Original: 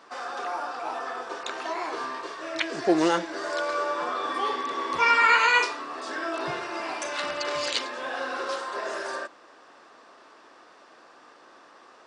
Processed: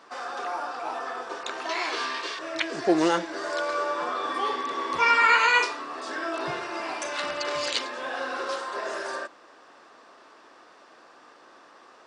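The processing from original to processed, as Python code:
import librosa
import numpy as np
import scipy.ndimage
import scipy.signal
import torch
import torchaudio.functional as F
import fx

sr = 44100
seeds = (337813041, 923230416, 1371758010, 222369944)

y = fx.weighting(x, sr, curve='D', at=(1.69, 2.39))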